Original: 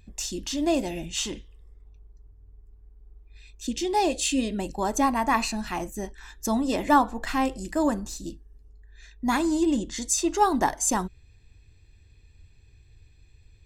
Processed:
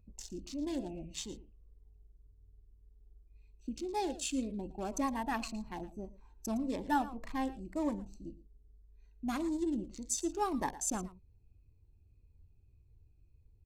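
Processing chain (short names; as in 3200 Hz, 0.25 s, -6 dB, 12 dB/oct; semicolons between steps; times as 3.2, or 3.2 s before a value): Wiener smoothing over 25 samples; echo 0.113 s -16.5 dB; cascading phaser falling 1.8 Hz; gain -9 dB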